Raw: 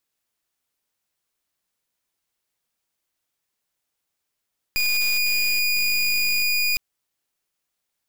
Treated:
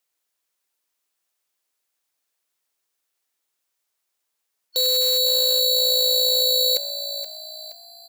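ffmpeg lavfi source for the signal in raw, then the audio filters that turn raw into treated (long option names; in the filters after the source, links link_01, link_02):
-f lavfi -i "aevalsrc='0.0891*(2*lt(mod(2450*t,1),0.25)-1)':duration=2.01:sample_rate=44100"
-filter_complex "[0:a]afftfilt=real='real(if(lt(b,272),68*(eq(floor(b/68),0)*3+eq(floor(b/68),1)*2+eq(floor(b/68),2)*1+eq(floor(b/68),3)*0)+mod(b,68),b),0)':imag='imag(if(lt(b,272),68*(eq(floor(b/68),0)*3+eq(floor(b/68),1)*2+eq(floor(b/68),2)*1+eq(floor(b/68),3)*0)+mod(b,68),b),0)':win_size=2048:overlap=0.75,bass=frequency=250:gain=-11,treble=frequency=4000:gain=2,asplit=2[link_01][link_02];[link_02]asplit=4[link_03][link_04][link_05][link_06];[link_03]adelay=474,afreqshift=58,volume=-10.5dB[link_07];[link_04]adelay=948,afreqshift=116,volume=-18.2dB[link_08];[link_05]adelay=1422,afreqshift=174,volume=-26dB[link_09];[link_06]adelay=1896,afreqshift=232,volume=-33.7dB[link_10];[link_07][link_08][link_09][link_10]amix=inputs=4:normalize=0[link_11];[link_01][link_11]amix=inputs=2:normalize=0"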